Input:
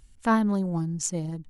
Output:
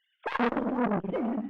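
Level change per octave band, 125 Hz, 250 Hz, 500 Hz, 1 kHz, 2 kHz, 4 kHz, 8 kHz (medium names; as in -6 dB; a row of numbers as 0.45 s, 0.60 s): -10.5 dB, -3.5 dB, +2.0 dB, -1.5 dB, 0.0 dB, -2.5 dB, under -35 dB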